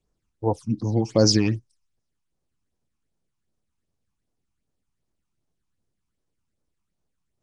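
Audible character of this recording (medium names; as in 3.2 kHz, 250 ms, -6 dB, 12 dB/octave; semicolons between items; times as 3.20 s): phasing stages 8, 2.6 Hz, lowest notch 500–3400 Hz; Nellymoser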